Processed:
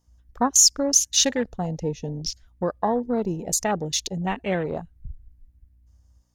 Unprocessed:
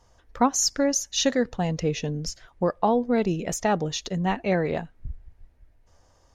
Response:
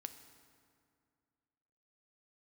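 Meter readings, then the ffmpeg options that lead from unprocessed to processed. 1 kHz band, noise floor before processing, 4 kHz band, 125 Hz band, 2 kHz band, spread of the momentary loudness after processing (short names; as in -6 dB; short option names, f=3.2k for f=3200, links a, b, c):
-1.5 dB, -61 dBFS, +5.5 dB, -2.0 dB, -1.5 dB, 15 LU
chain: -af "aemphasis=mode=production:type=75fm,aeval=exprs='val(0)+0.00282*(sin(2*PI*60*n/s)+sin(2*PI*2*60*n/s)/2+sin(2*PI*3*60*n/s)/3+sin(2*PI*4*60*n/s)/4+sin(2*PI*5*60*n/s)/5)':c=same,afwtdn=0.0316,volume=-1dB"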